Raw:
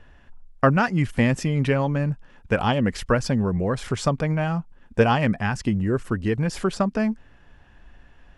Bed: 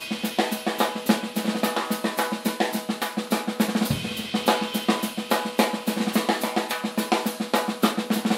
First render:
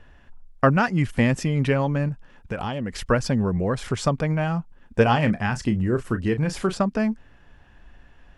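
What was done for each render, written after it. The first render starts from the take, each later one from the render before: 2.08–3.01 compressor, threshold -24 dBFS; 5.03–6.78 doubler 33 ms -11 dB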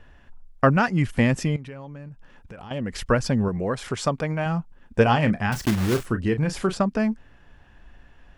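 1.56–2.71 compressor 3:1, threshold -41 dBFS; 3.48–4.46 low shelf 160 Hz -8.5 dB; 5.52–6.06 block floating point 3-bit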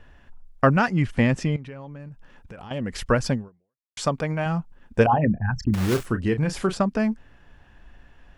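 0.93–2 air absorption 55 m; 3.33–3.97 fade out exponential; 5.06–5.74 formant sharpening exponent 3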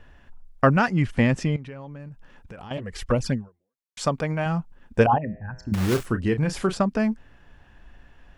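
2.77–4.01 envelope flanger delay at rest 5.6 ms, full sweep at -16.5 dBFS; 5.18–5.72 resonator 57 Hz, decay 1.8 s, harmonics odd, mix 70%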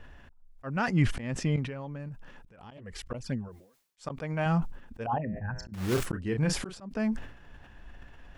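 auto swell 0.483 s; sustainer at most 94 dB/s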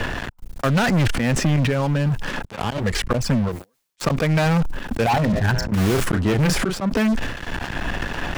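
sample leveller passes 5; three-band squash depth 70%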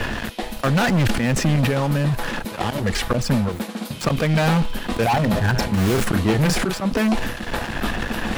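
add bed -6 dB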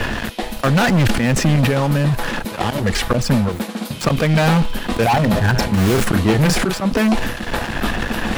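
gain +3.5 dB

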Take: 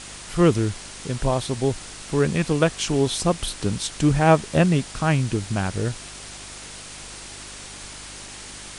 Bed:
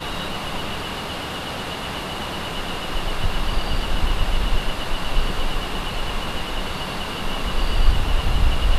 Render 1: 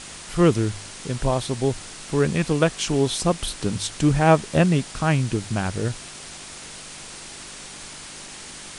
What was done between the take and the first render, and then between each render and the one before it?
de-hum 50 Hz, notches 2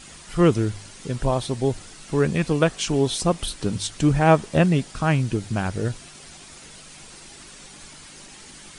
denoiser 8 dB, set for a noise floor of -39 dBFS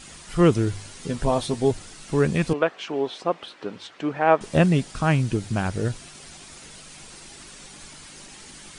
0.66–1.71 doubler 12 ms -6 dB; 2.53–4.41 BPF 410–2300 Hz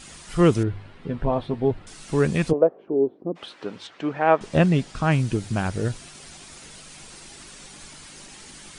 0.63–1.87 air absorption 460 m; 2.5–3.35 synth low-pass 630 Hz -> 270 Hz, resonance Q 2.1; 3.87–5.12 air absorption 50 m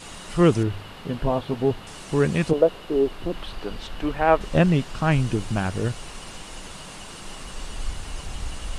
add bed -14 dB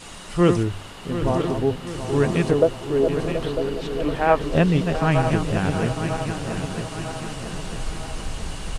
regenerating reverse delay 0.475 s, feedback 72%, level -7 dB; on a send: feedback echo 0.729 s, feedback 51%, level -11.5 dB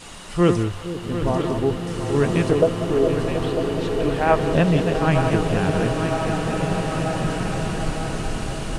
split-band echo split 580 Hz, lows 0.461 s, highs 0.183 s, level -13 dB; bloom reverb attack 2.34 s, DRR 4.5 dB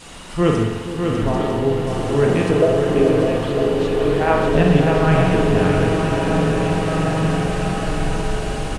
echo 0.6 s -6 dB; spring tank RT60 1.1 s, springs 44 ms, chirp 40 ms, DRR 1 dB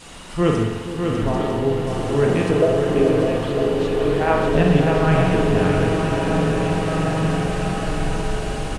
gain -1.5 dB

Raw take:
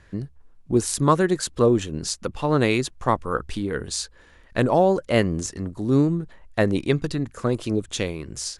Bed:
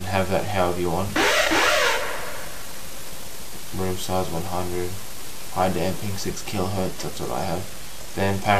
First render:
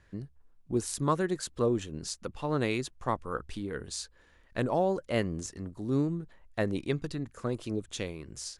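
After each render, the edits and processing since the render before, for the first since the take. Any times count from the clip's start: gain -9.5 dB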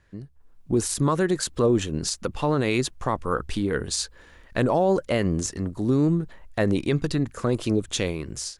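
AGC gain up to 11.5 dB; limiter -12.5 dBFS, peak gain reduction 8.5 dB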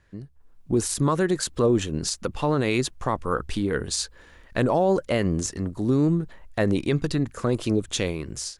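nothing audible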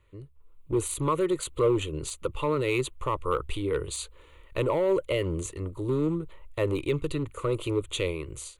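hard clip -16 dBFS, distortion -18 dB; fixed phaser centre 1100 Hz, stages 8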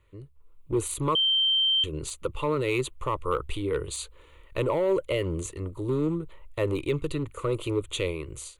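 1.15–1.84 bleep 3130 Hz -20 dBFS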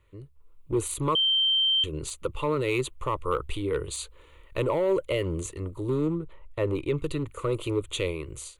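6.08–6.98 high shelf 3700 Hz -9.5 dB

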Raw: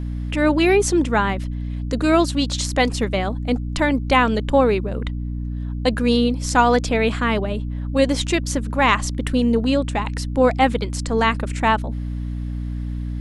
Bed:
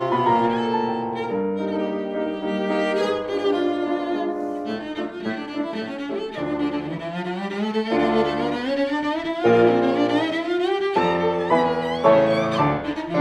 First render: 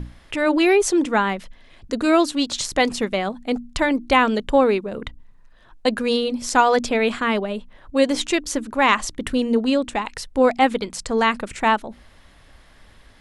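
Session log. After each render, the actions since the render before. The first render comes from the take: notches 60/120/180/240/300 Hz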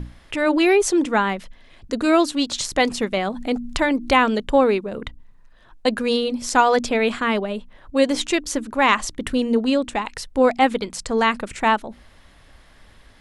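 3.17–4.28 upward compressor, threshold -19 dBFS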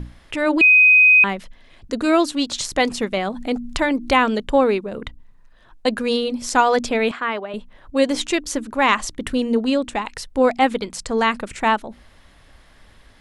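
0.61–1.24 bleep 2510 Hz -8 dBFS; 7.11–7.54 band-pass 1200 Hz, Q 0.63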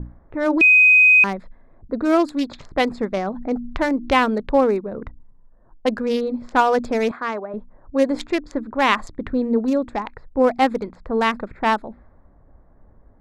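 Wiener smoothing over 15 samples; low-pass opened by the level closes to 730 Hz, open at -16.5 dBFS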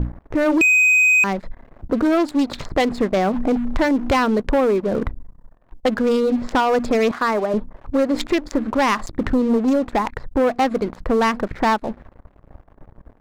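compressor 3:1, threshold -26 dBFS, peak gain reduction 11.5 dB; sample leveller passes 3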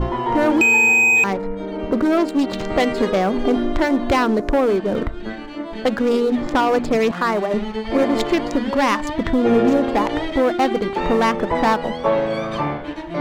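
add bed -3 dB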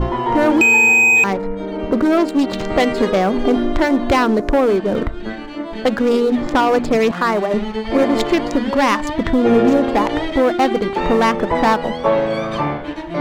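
gain +2.5 dB

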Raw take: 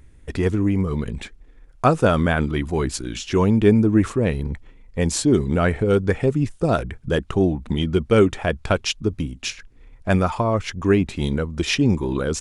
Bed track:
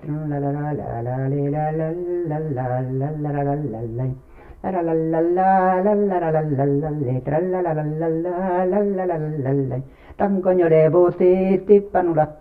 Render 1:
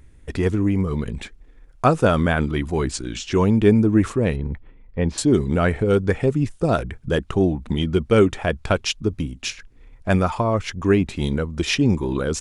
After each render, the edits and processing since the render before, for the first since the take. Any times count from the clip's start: 2.91–3.4 brick-wall FIR low-pass 9500 Hz; 4.36–5.18 air absorption 320 m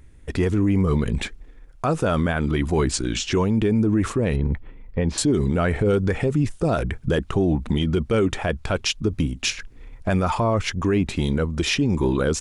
AGC gain up to 8 dB; limiter -12.5 dBFS, peak gain reduction 11 dB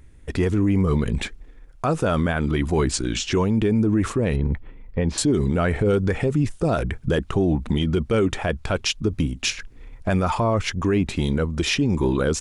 nothing audible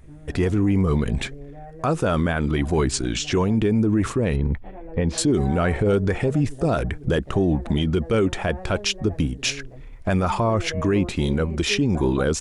add bed track -19 dB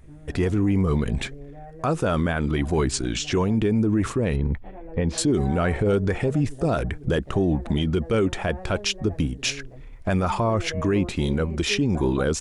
gain -1.5 dB

